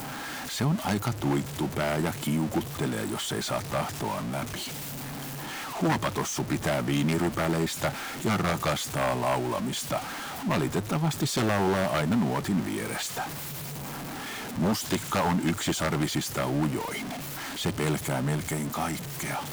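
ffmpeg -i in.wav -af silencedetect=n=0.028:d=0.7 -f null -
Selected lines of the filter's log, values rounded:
silence_start: 4.64
silence_end: 5.76 | silence_duration: 1.12
silence_start: 13.25
silence_end: 14.57 | silence_duration: 1.32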